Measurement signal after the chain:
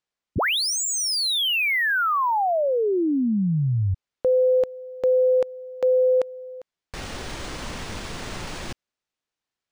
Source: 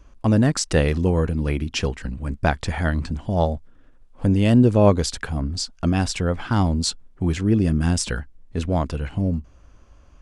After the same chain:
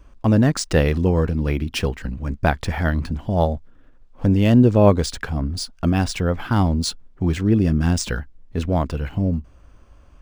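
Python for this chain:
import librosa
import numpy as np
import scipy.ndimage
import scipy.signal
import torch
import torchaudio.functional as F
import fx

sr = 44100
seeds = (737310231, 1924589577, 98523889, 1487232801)

y = np.interp(np.arange(len(x)), np.arange(len(x))[::3], x[::3])
y = F.gain(torch.from_numpy(y), 1.5).numpy()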